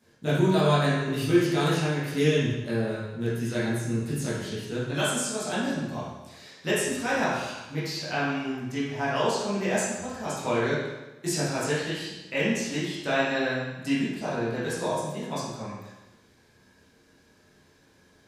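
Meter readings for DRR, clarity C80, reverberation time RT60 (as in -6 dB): -11.0 dB, 2.0 dB, 1.1 s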